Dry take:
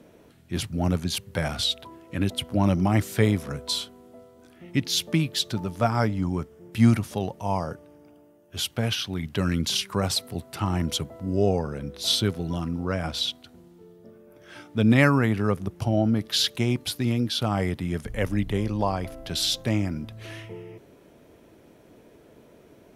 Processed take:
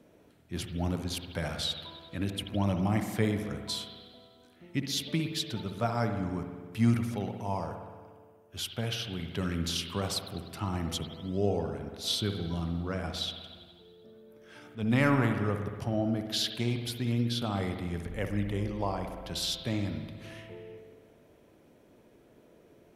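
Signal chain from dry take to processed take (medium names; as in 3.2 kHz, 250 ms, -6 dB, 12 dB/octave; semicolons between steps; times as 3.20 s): 14.58–15.32 s: transient shaper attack -9 dB, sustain +9 dB; spring tank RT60 1.6 s, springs 59 ms, chirp 45 ms, DRR 5.5 dB; trim -7.5 dB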